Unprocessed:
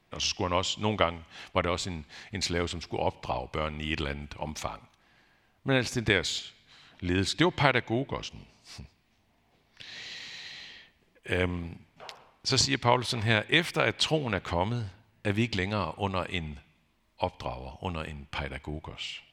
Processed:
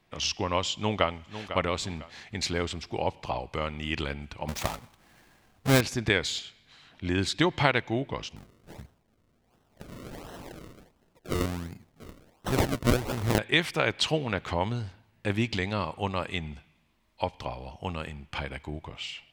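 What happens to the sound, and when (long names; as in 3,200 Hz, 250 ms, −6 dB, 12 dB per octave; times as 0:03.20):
0:00.74–0:01.53: delay throw 500 ms, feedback 30%, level −11.5 dB
0:04.48–0:05.81: each half-wave held at its own peak
0:08.36–0:13.39: sample-and-hold swept by an LFO 37× 1.4 Hz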